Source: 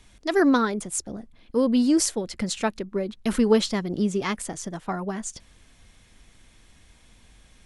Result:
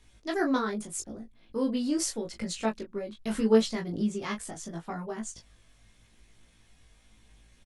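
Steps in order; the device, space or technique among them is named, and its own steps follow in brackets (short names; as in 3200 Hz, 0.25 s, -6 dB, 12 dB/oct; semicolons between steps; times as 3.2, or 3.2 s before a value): double-tracked vocal (doubler 18 ms -5 dB; chorus 0.8 Hz, delay 17.5 ms, depth 2.3 ms); gain -4.5 dB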